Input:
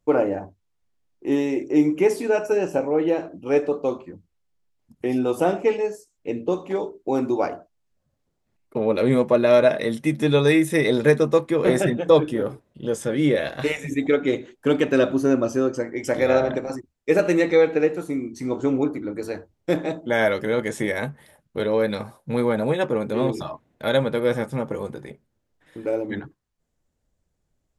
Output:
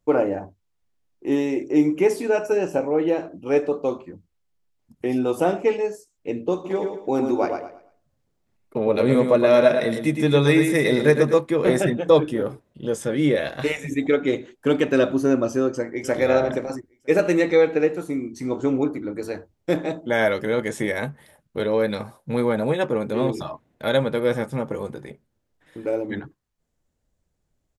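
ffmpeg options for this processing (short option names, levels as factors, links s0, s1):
-filter_complex "[0:a]asplit=3[s0][s1][s2];[s0]afade=t=out:st=6.64:d=0.02[s3];[s1]aecho=1:1:112|224|336|448:0.473|0.142|0.0426|0.0128,afade=t=in:st=6.64:d=0.02,afade=t=out:st=11.34:d=0.02[s4];[s2]afade=t=in:st=11.34:d=0.02[s5];[s3][s4][s5]amix=inputs=3:normalize=0,asplit=2[s6][s7];[s7]afade=t=in:st=15.53:d=0.01,afade=t=out:st=16.17:d=0.01,aecho=0:1:480|960:0.158489|0.0237734[s8];[s6][s8]amix=inputs=2:normalize=0"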